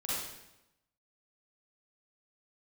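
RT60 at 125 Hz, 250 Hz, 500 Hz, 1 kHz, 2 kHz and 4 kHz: 1.0, 1.0, 0.95, 0.90, 0.85, 0.80 seconds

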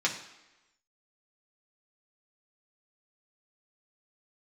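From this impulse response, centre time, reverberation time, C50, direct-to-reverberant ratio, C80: 20 ms, 1.0 s, 9.0 dB, −2.5 dB, 11.5 dB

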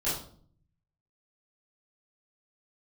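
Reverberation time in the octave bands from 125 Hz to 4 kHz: 1.2, 0.80, 0.55, 0.45, 0.40, 0.40 seconds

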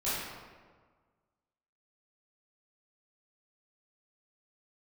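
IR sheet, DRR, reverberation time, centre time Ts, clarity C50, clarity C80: −12.5 dB, 1.5 s, 105 ms, −2.5 dB, 0.5 dB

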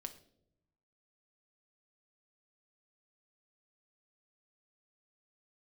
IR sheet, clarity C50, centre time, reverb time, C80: 13.5 dB, 8 ms, non-exponential decay, 16.5 dB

